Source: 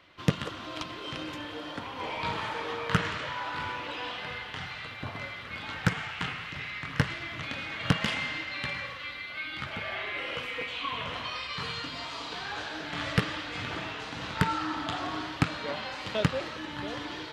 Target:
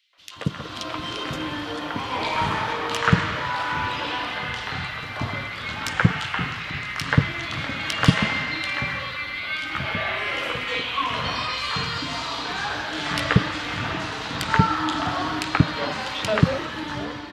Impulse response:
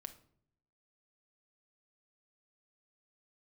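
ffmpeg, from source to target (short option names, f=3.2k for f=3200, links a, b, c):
-filter_complex "[0:a]dynaudnorm=f=130:g=9:m=11.5dB,acrossover=split=490|2700[a][b][c];[b]adelay=130[d];[a]adelay=180[e];[e][d][c]amix=inputs=3:normalize=0,volume=-1dB"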